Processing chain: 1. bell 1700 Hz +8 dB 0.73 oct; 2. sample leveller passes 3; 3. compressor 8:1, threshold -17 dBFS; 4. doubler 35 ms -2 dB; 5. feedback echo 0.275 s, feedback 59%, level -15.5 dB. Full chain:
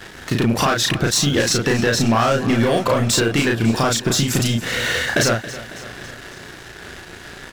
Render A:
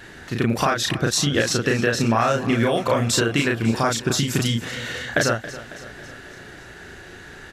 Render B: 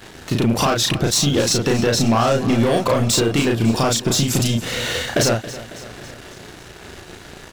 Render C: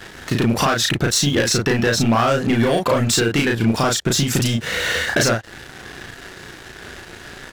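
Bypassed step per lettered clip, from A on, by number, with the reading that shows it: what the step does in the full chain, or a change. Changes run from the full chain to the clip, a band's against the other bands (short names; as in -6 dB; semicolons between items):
2, crest factor change +5.0 dB; 1, 2 kHz band -5.5 dB; 5, echo-to-direct -13.5 dB to none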